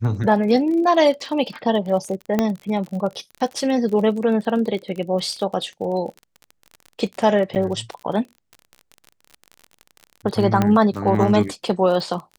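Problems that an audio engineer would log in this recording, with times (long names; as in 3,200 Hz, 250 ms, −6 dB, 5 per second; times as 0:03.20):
surface crackle 35 per second −29 dBFS
0:02.39: click −6 dBFS
0:07.55–0:07.56: drop-out 8.3 ms
0:10.62: click −6 dBFS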